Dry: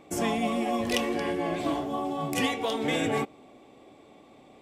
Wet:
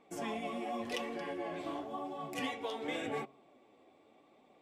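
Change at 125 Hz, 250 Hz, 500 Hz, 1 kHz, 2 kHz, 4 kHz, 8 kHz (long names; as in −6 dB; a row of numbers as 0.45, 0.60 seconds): −15.5, −12.5, −10.0, −9.5, −10.0, −11.0, −14.5 decibels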